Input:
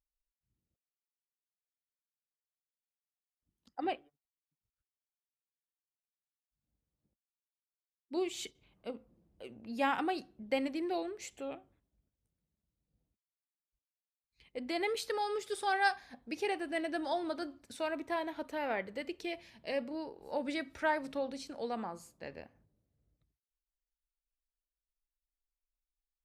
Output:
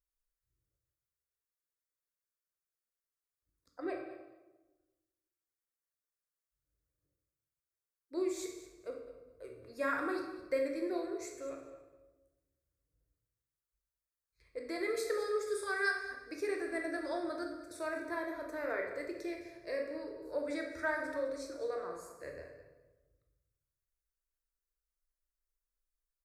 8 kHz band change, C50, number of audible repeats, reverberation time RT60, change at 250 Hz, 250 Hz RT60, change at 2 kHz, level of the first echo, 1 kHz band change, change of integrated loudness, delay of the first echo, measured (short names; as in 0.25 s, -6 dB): 0.0 dB, 5.0 dB, 2, 1.1 s, -2.0 dB, 1.4 s, +0.5 dB, -14.5 dB, -7.0 dB, -1.5 dB, 0.209 s